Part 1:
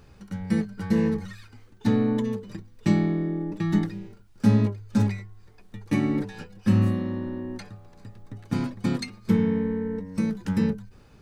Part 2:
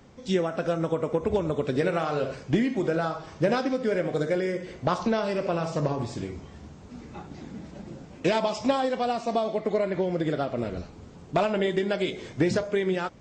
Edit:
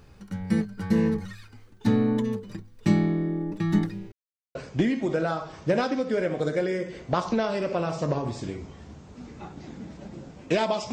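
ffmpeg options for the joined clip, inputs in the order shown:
ffmpeg -i cue0.wav -i cue1.wav -filter_complex "[0:a]apad=whole_dur=10.92,atrim=end=10.92,asplit=2[link_01][link_02];[link_01]atrim=end=4.12,asetpts=PTS-STARTPTS,afade=type=out:start_time=4.116:duration=0.004:curve=hsin[link_03];[link_02]atrim=start=4.12:end=4.55,asetpts=PTS-STARTPTS,volume=0[link_04];[1:a]atrim=start=2.29:end=8.66,asetpts=PTS-STARTPTS,afade=type=in:duration=0.004:curve=hsin[link_05];[link_03][link_04][link_05]concat=n=3:v=0:a=1" out.wav

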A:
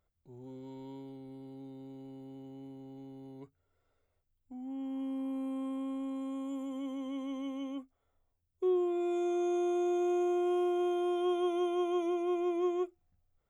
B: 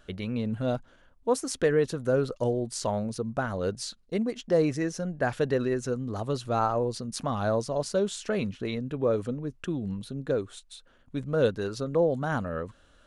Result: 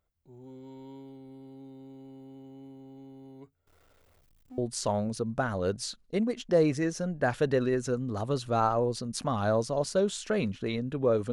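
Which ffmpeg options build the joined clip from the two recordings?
ffmpeg -i cue0.wav -i cue1.wav -filter_complex "[0:a]asettb=1/sr,asplit=3[link_01][link_02][link_03];[link_01]atrim=end=3.674[link_04];[link_02]atrim=start=3.67:end=4.58,asetpts=PTS-STARTPTS,afade=type=in:duration=0.004:curve=qsin,afade=type=out:start_time=0.906:duration=0.004:curve=qsin,aeval=exprs='val(0)+0.5*0.00119*sgn(val(0))':channel_layout=same[link_05];[link_03]atrim=start=4.576[link_06];[link_04][link_05]acrossfade=duration=0.004:curve1=hsin:curve2=qsin[link_07];[link_07][link_06]acrossfade=duration=0.004:curve1=qsin:curve2=hsin,apad=whole_dur=11.32,atrim=end=11.32,atrim=end=4.582[link_08];[1:a]atrim=start=2.568:end=9.31[link_09];[link_08][link_09]acrossfade=duration=0.004:curve1=hsin:curve2=hsin" out.wav

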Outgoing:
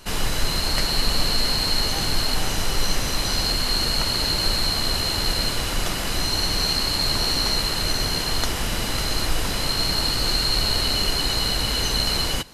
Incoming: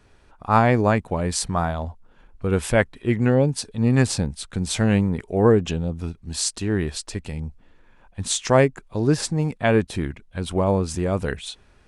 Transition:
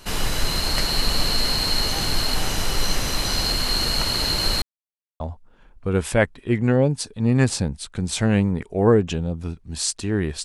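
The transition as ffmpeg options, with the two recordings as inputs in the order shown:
ffmpeg -i cue0.wav -i cue1.wav -filter_complex "[0:a]apad=whole_dur=10.44,atrim=end=10.44,asplit=2[link_01][link_02];[link_01]atrim=end=4.62,asetpts=PTS-STARTPTS,afade=type=out:start_time=4.616:duration=0.004:curve=hsin[link_03];[link_02]atrim=start=4.62:end=5.2,asetpts=PTS-STARTPTS,volume=0[link_04];[1:a]atrim=start=1.78:end=7.02,asetpts=PTS-STARTPTS,afade=type=in:duration=0.004:curve=hsin[link_05];[link_03][link_04][link_05]concat=n=3:v=0:a=1" out.wav

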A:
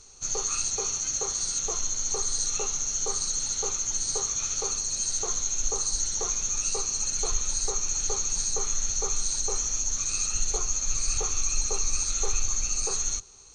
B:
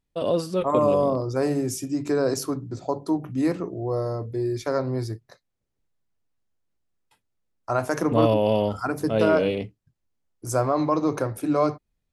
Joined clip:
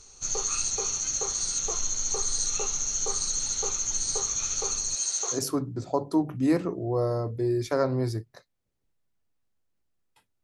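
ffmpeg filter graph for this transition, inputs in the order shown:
ffmpeg -i cue0.wav -i cue1.wav -filter_complex "[0:a]asettb=1/sr,asplit=3[link_01][link_02][link_03];[link_01]atrim=end=4.954[link_04];[link_02]atrim=start=4.95:end=5.41,asetpts=PTS-STARTPTS,afade=type=in:duration=0.004:curve=qsin,afade=type=out:start_time=0.456:duration=0.004:curve=qsin,highpass=460[link_05];[link_03]atrim=start=5.406[link_06];[link_04][link_05]acrossfade=duration=0.004:curve1=hsin:curve2=qsin[link_07];[link_07][link_06]acrossfade=duration=0.004:curve1=qsin:curve2=hsin,apad=whole_dur=10.43,atrim=end=10.43,atrim=end=5.41,asetpts=PTS-STARTPTS[link_08];[1:a]atrim=start=2.26:end=7.38,asetpts=PTS-STARTPTS[link_09];[link_08][link_09]acrossfade=duration=0.1:curve1=tri:curve2=tri" out.wav

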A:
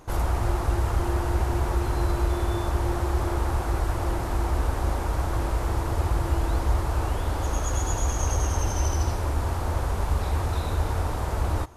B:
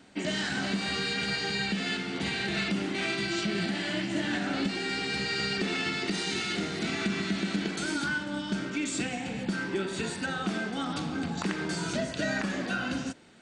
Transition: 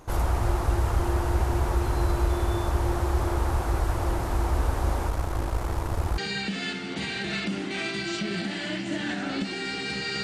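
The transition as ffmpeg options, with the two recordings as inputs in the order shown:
ffmpeg -i cue0.wav -i cue1.wav -filter_complex "[0:a]asettb=1/sr,asplit=3[link_01][link_02][link_03];[link_01]atrim=end=5.094[link_04];[link_02]atrim=start=5.09:end=6.18,asetpts=PTS-STARTPTS,afade=type=in:duration=0.004:curve=qsin,afade=type=out:start_time=1.086:duration=0.004:curve=qsin,aeval=exprs='if(lt(val(0),0),0.447*val(0),val(0))':channel_layout=same[link_05];[link_03]atrim=start=6.176[link_06];[link_04][link_05]acrossfade=duration=0.004:curve1=hsin:curve2=qsin[link_07];[link_07][link_06]acrossfade=duration=0.004:curve1=qsin:curve2=hsin,apad=whole_dur=10.23,atrim=end=10.23,atrim=end=6.182[link_08];[1:a]atrim=start=1.418:end=5.47[link_09];[link_08][link_09]acrossfade=duration=0.004:curve1=hsin:curve2=hsin" out.wav

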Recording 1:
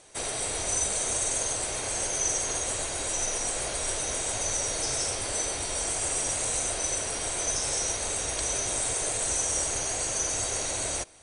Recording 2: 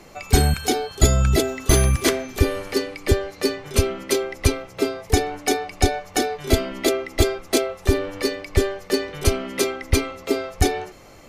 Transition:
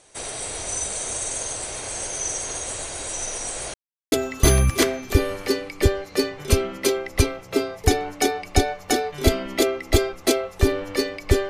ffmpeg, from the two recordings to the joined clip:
ffmpeg -i cue0.wav -i cue1.wav -filter_complex "[0:a]apad=whole_dur=11.49,atrim=end=11.49,asplit=2[link_01][link_02];[link_01]atrim=end=3.74,asetpts=PTS-STARTPTS,afade=type=out:start_time=3.736:duration=0.004:curve=hsin[link_03];[link_02]atrim=start=3.74:end=4.12,asetpts=PTS-STARTPTS,volume=0[link_04];[1:a]atrim=start=1.38:end=8.75,asetpts=PTS-STARTPTS,afade=type=in:duration=0.004:curve=hsin[link_05];[link_03][link_04][link_05]concat=n=3:v=0:a=1" out.wav

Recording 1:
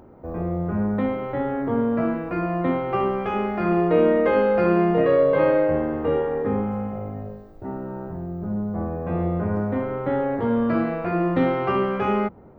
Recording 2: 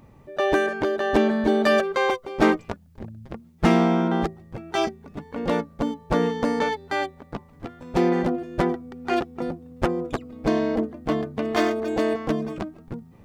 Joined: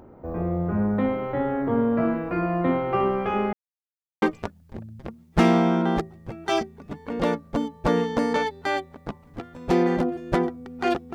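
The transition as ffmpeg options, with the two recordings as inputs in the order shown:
ffmpeg -i cue0.wav -i cue1.wav -filter_complex "[0:a]apad=whole_dur=11.14,atrim=end=11.14,asplit=2[link_01][link_02];[link_01]atrim=end=3.53,asetpts=PTS-STARTPTS,afade=type=out:start_time=3.526:duration=0.004:curve=hsin[link_03];[link_02]atrim=start=3.53:end=4.22,asetpts=PTS-STARTPTS,volume=0[link_04];[1:a]atrim=start=2.48:end=9.4,asetpts=PTS-STARTPTS,afade=type=in:duration=0.004:curve=hsin[link_05];[link_03][link_04][link_05]concat=n=3:v=0:a=1" out.wav

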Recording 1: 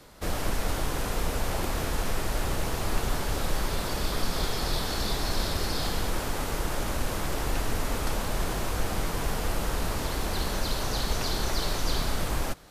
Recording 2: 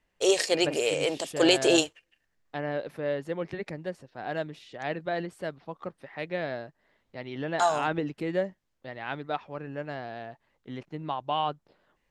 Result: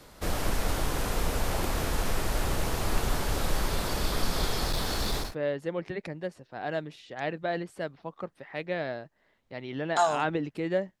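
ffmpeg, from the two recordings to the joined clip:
ffmpeg -i cue0.wav -i cue1.wav -filter_complex "[0:a]asettb=1/sr,asplit=3[link_01][link_02][link_03];[link_01]atrim=end=4.654[link_04];[link_02]atrim=start=4.65:end=5.35,asetpts=PTS-STARTPTS,afade=type=in:duration=0.004:curve=qsin,afade=type=out:start_time=0.696:duration=0.004:curve=qsin,volume=23.5dB,asoftclip=hard,volume=-23.5dB[link_05];[link_03]atrim=start=5.346[link_06];[link_04][link_05]acrossfade=duration=0.004:curve1=hsin:curve2=qsin[link_07];[link_07][link_06]acrossfade=duration=0.004:curve1=qsin:curve2=hsin,apad=whole_dur=11,atrim=end=11,atrim=end=5.35,asetpts=PTS-STARTPTS[link_08];[1:a]atrim=start=2.8:end=8.63,asetpts=PTS-STARTPTS[link_09];[link_08][link_09]acrossfade=duration=0.18:curve1=tri:curve2=tri" out.wav

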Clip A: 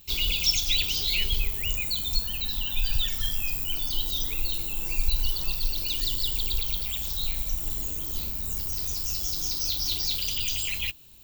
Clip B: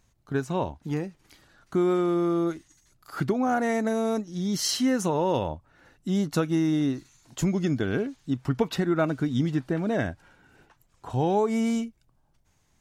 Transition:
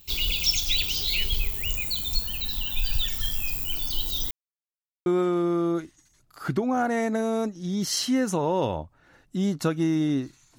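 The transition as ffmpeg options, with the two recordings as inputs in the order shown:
ffmpeg -i cue0.wav -i cue1.wav -filter_complex "[0:a]apad=whole_dur=10.58,atrim=end=10.58,asplit=2[link_01][link_02];[link_01]atrim=end=4.31,asetpts=PTS-STARTPTS,afade=type=out:start_time=4.306:duration=0.004:curve=hsin[link_03];[link_02]atrim=start=4.31:end=5.06,asetpts=PTS-STARTPTS,volume=0[link_04];[1:a]atrim=start=1.78:end=7.3,asetpts=PTS-STARTPTS,afade=type=in:duration=0.004:curve=hsin[link_05];[link_03][link_04][link_05]concat=n=3:v=0:a=1" out.wav

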